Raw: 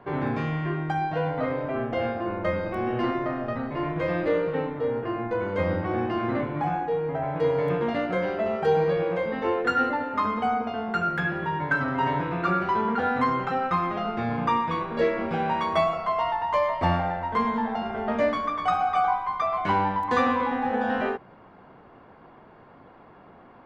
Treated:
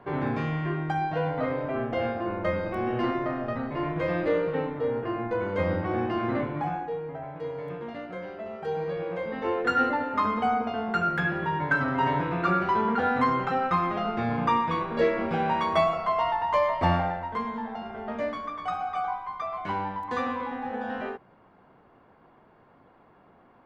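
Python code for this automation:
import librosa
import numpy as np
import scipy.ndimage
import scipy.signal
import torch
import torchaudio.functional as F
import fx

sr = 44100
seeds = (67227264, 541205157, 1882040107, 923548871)

y = fx.gain(x, sr, db=fx.line((6.46, -1.0), (7.4, -11.0), (8.49, -11.0), (9.81, 0.0), (17.02, 0.0), (17.43, -7.0)))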